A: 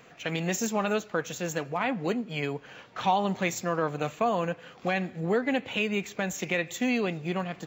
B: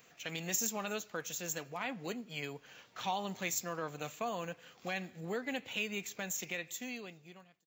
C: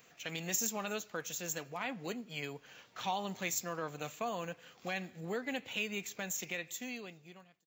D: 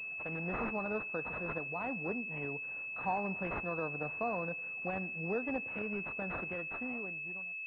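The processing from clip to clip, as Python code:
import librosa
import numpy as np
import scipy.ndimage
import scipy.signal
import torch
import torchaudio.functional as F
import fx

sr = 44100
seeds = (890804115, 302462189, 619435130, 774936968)

y1 = fx.fade_out_tail(x, sr, length_s=1.46)
y1 = scipy.signal.lfilter([1.0, -0.8], [1.0], y1)
y1 = F.gain(torch.from_numpy(y1), 1.5).numpy()
y2 = y1
y3 = fx.pwm(y2, sr, carrier_hz=2600.0)
y3 = F.gain(torch.from_numpy(y3), 2.5).numpy()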